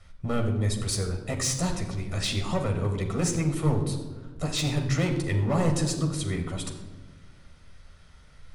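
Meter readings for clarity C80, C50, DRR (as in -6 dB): 9.5 dB, 7.5 dB, 2.0 dB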